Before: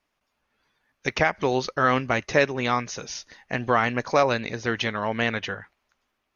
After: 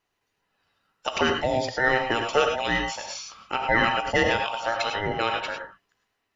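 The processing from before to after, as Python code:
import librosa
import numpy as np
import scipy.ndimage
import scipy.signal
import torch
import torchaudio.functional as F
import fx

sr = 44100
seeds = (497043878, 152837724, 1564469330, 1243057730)

y = fx.band_invert(x, sr, width_hz=1000)
y = fx.graphic_eq_15(y, sr, hz=(400, 1000, 2500), db=(-5, 4, 4), at=(2.76, 4.66))
y = fx.rev_gated(y, sr, seeds[0], gate_ms=130, shape='rising', drr_db=3.5)
y = F.gain(torch.from_numpy(y), -2.0).numpy()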